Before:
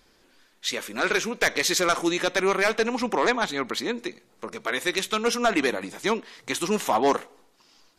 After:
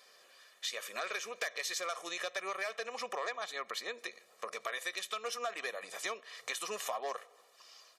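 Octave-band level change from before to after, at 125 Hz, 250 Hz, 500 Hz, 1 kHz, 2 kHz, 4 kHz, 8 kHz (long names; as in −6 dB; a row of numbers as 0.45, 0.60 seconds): below −30 dB, −28.5 dB, −16.0 dB, −13.5 dB, −12.5 dB, −11.0 dB, −11.0 dB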